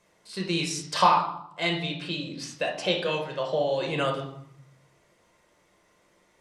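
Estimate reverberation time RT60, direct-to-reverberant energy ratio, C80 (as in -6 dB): 0.70 s, 0.0 dB, 10.0 dB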